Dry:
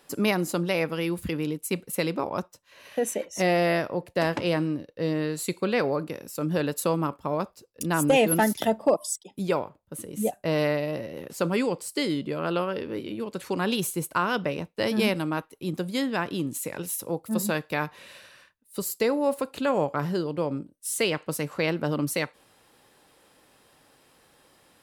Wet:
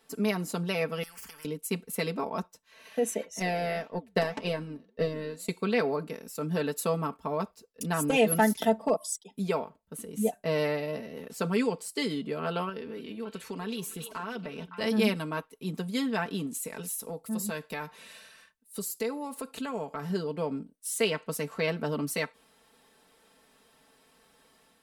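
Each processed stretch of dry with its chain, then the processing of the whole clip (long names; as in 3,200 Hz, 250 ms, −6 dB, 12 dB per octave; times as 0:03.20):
0:01.03–0:01.45: downward compressor 3 to 1, threshold −33 dBFS + phaser with its sweep stopped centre 1,600 Hz, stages 4 + every bin compressed towards the loudest bin 10 to 1
0:03.39–0:05.49: transient designer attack +11 dB, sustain −8 dB + flanger 1.8 Hz, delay 3.1 ms, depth 7.5 ms, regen −89%
0:12.69–0:14.81: downward compressor 2.5 to 1, threshold −33 dBFS + echo through a band-pass that steps 281 ms, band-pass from 3,300 Hz, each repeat −1.4 octaves, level −5 dB
0:16.46–0:20.10: parametric band 9,500 Hz +5 dB 1.4 octaves + downward compressor 2 to 1, threshold −31 dBFS
whole clip: parametric band 14,000 Hz −3 dB 0.23 octaves; comb filter 4.5 ms, depth 79%; automatic gain control gain up to 3 dB; level −8 dB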